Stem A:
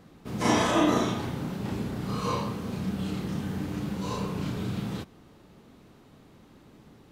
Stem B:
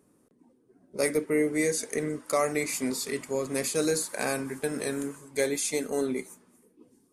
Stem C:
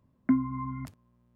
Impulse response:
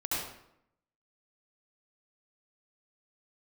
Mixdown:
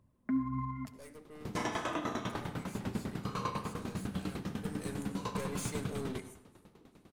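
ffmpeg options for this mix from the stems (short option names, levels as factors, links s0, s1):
-filter_complex "[0:a]adynamicequalizer=threshold=0.00708:dfrequency=1500:dqfactor=0.84:tfrequency=1500:tqfactor=0.84:attack=5:release=100:ratio=0.375:range=3:mode=boostabove:tftype=bell,aeval=exprs='val(0)*pow(10,-20*if(lt(mod(10*n/s,1),2*abs(10)/1000),1-mod(10*n/s,1)/(2*abs(10)/1000),(mod(10*n/s,1)-2*abs(10)/1000)/(1-2*abs(10)/1000))/20)':c=same,adelay=1150,volume=0.841,asplit=2[s0][s1];[s1]volume=0.141[s2];[1:a]aeval=exprs='(tanh(28.2*val(0)+0.5)-tanh(0.5))/28.2':c=same,volume=0.398,afade=t=in:st=4.55:d=0.32:silence=0.251189,asplit=2[s3][s4];[s4]volume=0.112[s5];[2:a]alimiter=limit=0.0708:level=0:latency=1,aphaser=in_gain=1:out_gain=1:delay=4.9:decay=0.43:speed=1.7:type=triangular,volume=0.562,asplit=2[s6][s7];[s7]volume=0.126[s8];[3:a]atrim=start_sample=2205[s9];[s2][s5][s8]amix=inputs=3:normalize=0[s10];[s10][s9]afir=irnorm=-1:irlink=0[s11];[s0][s3][s6][s11]amix=inputs=4:normalize=0,alimiter=limit=0.0631:level=0:latency=1:release=201"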